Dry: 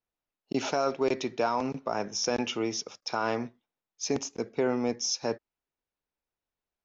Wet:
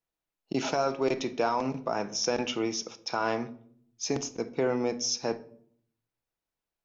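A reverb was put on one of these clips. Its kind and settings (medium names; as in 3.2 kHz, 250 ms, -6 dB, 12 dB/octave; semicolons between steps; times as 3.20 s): simulated room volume 880 m³, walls furnished, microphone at 0.68 m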